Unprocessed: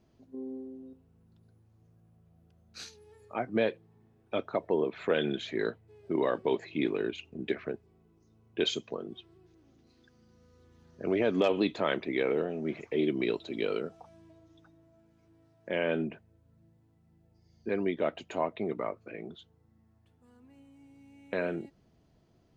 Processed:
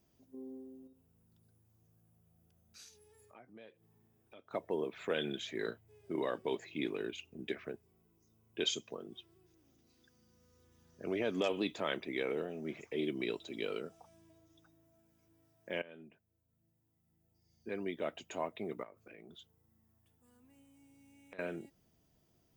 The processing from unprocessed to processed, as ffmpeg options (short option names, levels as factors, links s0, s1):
-filter_complex "[0:a]asettb=1/sr,asplit=3[s0][s1][s2];[s0]atrim=end=0.874[s3];[s1]atrim=start=0.87:end=4.51,asetpts=PTS-STARTPTS,afade=t=in:d=0.004:c=qsin,afade=t=out:st=3.636:d=0.004:c=qsin,acompressor=threshold=0.002:ratio=2.5:attack=3.2:release=140:knee=1:detection=peak[s4];[s2]atrim=start=4.506[s5];[s3][s4]acrossfade=d=0.004:c1=hsin:c2=qsin[s6];[s6][s5]acrossfade=d=0.004:c1=qsin:c2=hsin,asettb=1/sr,asplit=3[s7][s8][s9];[s7]atrim=end=5.604[s10];[s8]atrim=start=5.6:end=6.21,asetpts=PTS-STARTPTS,afade=t=in:d=0.004:c=qsin,afade=t=out:st=0.606:d=0.004:c=qsin,asplit=2[s11][s12];[s12]adelay=35,volume=0.398[s13];[s11][s13]amix=inputs=2:normalize=0,atrim=end_sample=26901[s14];[s9]atrim=start=6.206[s15];[s10][s14]acrossfade=d=0.004:c1=hsin:c2=qsin[s16];[s16][s15]acrossfade=d=0.004:c1=qsin:c2=hsin,asettb=1/sr,asplit=3[s17][s18][s19];[s17]atrim=end=18.834[s20];[s18]atrim=start=18.83:end=21.39,asetpts=PTS-STARTPTS,afade=t=in:d=0.004:c=qsin,afade=t=out:st=2.556:d=0.004:c=qsin,acompressor=threshold=0.00794:ratio=12:attack=3.2:release=140:knee=1:detection=peak[s21];[s19]atrim=start=21.386[s22];[s20][s21]acrossfade=d=0.004:c1=hsin:c2=qsin[s23];[s23][s22]acrossfade=d=0.004:c1=qsin:c2=hsin,asplit=2[s24][s25];[s24]atrim=end=15.82,asetpts=PTS-STARTPTS,afade=t=out:st=15.816:d=0.004:c=hsin:silence=0.105925[s26];[s25]atrim=start=15.82,asetpts=PTS-STARTPTS,afade=t=in:d=2.4:silence=0.105925[s27];[s26][s27]concat=n=2:v=0:a=1,aemphasis=mode=production:type=75fm,bandreject=f=4200:w=8.2,volume=0.447"